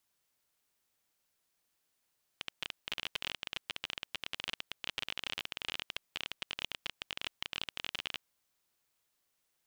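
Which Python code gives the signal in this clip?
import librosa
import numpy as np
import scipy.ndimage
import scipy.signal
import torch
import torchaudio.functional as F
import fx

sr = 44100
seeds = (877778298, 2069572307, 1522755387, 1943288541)

y = fx.geiger_clicks(sr, seeds[0], length_s=5.8, per_s=25.0, level_db=-19.0)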